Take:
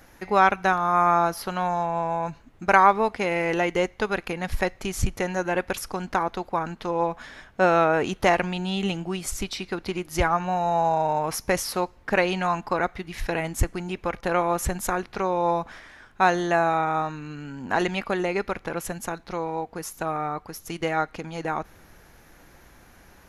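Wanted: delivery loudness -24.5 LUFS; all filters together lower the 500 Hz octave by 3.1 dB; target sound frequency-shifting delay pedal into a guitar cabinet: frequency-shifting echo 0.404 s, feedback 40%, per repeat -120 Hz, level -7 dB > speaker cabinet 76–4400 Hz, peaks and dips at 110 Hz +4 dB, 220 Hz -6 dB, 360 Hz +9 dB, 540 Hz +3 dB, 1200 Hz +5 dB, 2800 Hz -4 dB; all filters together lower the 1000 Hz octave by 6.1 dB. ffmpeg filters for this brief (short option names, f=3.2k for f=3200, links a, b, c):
-filter_complex "[0:a]equalizer=f=500:t=o:g=-8.5,equalizer=f=1k:t=o:g=-8,asplit=6[a][b][c][d][e][f];[b]adelay=404,afreqshift=-120,volume=-7dB[g];[c]adelay=808,afreqshift=-240,volume=-15dB[h];[d]adelay=1212,afreqshift=-360,volume=-22.9dB[i];[e]adelay=1616,afreqshift=-480,volume=-30.9dB[j];[f]adelay=2020,afreqshift=-600,volume=-38.8dB[k];[a][g][h][i][j][k]amix=inputs=6:normalize=0,highpass=76,equalizer=f=110:t=q:w=4:g=4,equalizer=f=220:t=q:w=4:g=-6,equalizer=f=360:t=q:w=4:g=9,equalizer=f=540:t=q:w=4:g=3,equalizer=f=1.2k:t=q:w=4:g=5,equalizer=f=2.8k:t=q:w=4:g=-4,lowpass=f=4.4k:w=0.5412,lowpass=f=4.4k:w=1.3066,volume=3.5dB"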